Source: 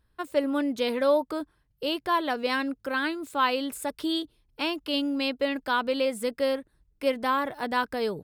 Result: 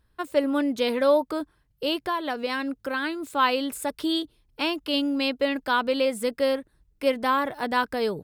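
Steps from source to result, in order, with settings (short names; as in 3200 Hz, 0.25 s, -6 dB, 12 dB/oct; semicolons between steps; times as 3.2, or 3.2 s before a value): 1.98–3.2 compressor 4:1, threshold -27 dBFS, peak gain reduction 6.5 dB; gain +2.5 dB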